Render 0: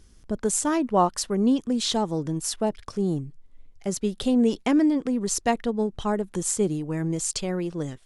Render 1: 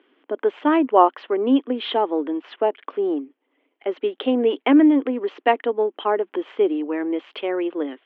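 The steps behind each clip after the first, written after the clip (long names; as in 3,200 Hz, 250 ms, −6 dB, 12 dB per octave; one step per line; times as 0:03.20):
Chebyshev band-pass filter 270–3,200 Hz, order 5
level +7 dB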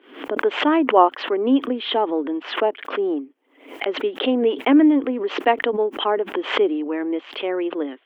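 background raised ahead of every attack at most 110 dB per second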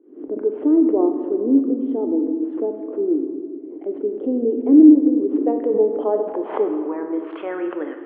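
low-pass filter sweep 350 Hz → 1,700 Hz, 0:05.21–0:07.75
on a send at −5 dB: convolution reverb RT60 2.0 s, pre-delay 6 ms
on the sum: level −4.5 dB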